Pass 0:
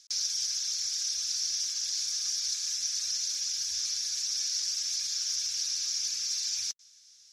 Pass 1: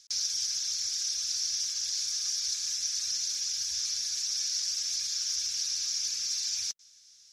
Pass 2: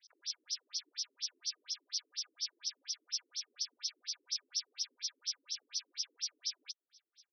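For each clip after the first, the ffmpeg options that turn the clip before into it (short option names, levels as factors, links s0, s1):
-af "lowshelf=f=350:g=3"
-af "afftfilt=real='re*between(b*sr/1024,310*pow(4500/310,0.5+0.5*sin(2*PI*4.2*pts/sr))/1.41,310*pow(4500/310,0.5+0.5*sin(2*PI*4.2*pts/sr))*1.41)':imag='im*between(b*sr/1024,310*pow(4500/310,0.5+0.5*sin(2*PI*4.2*pts/sr))/1.41,310*pow(4500/310,0.5+0.5*sin(2*PI*4.2*pts/sr))*1.41)':win_size=1024:overlap=0.75,volume=0.891"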